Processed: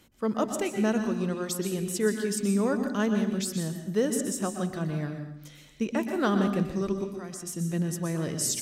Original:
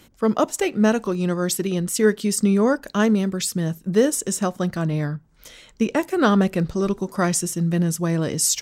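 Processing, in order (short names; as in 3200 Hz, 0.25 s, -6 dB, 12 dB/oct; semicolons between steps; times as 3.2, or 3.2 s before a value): 7.04–7.47 level quantiser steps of 16 dB; on a send: reverb RT60 0.75 s, pre-delay 0.117 s, DRR 6 dB; on the sum: gain -8.5 dB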